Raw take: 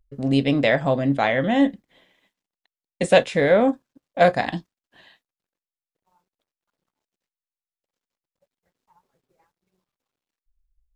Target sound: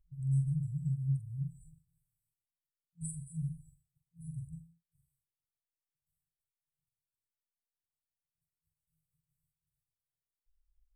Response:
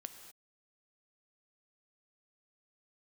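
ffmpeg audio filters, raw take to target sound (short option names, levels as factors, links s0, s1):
-filter_complex "[0:a]asplit=2[s0][s1];[1:a]atrim=start_sample=2205,atrim=end_sample=6174,adelay=44[s2];[s1][s2]afir=irnorm=-1:irlink=0,volume=0.891[s3];[s0][s3]amix=inputs=2:normalize=0,afftfilt=real='re*(1-between(b*sr/4096,170,7700))':imag='im*(1-between(b*sr/4096,170,7700))':win_size=4096:overlap=0.75,volume=0.531"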